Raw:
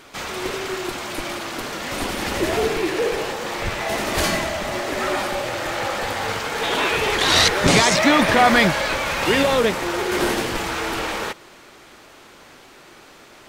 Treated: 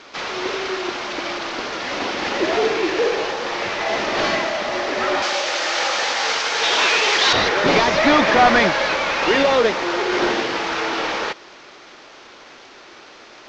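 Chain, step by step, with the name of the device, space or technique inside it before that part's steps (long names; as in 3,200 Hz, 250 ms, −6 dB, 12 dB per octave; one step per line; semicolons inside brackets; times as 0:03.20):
early wireless headset (high-pass filter 290 Hz 12 dB per octave; variable-slope delta modulation 32 kbit/s)
0:05.22–0:07.33: RIAA equalisation recording
level +3.5 dB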